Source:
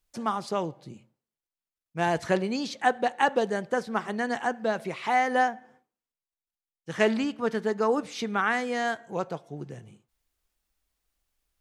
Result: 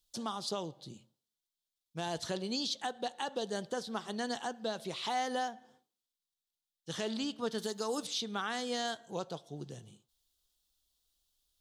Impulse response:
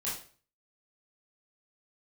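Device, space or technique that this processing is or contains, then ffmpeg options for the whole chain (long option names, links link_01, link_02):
over-bright horn tweeter: -filter_complex "[0:a]asettb=1/sr,asplit=3[link_01][link_02][link_03];[link_01]atrim=end=7.584[link_04];[link_02]atrim=start=7.58:end=8.07,asetpts=PTS-STARTPTS,afade=type=in:duration=0.004:curve=qsin,afade=type=out:start_time=0.486:duration=0.004:curve=qsin,aemphasis=mode=production:type=75kf[link_05];[link_03]atrim=start=8.066[link_06];[link_04][link_05]acrossfade=duration=0.004:curve1=hsin:curve2=qsin[link_07];[link_07][link_06]acrossfade=duration=0.004:curve1=qsin:curve2=hsin,highshelf=frequency=2800:width_type=q:width=3:gain=7.5,alimiter=limit=-19dB:level=0:latency=1:release=275,volume=-5.5dB"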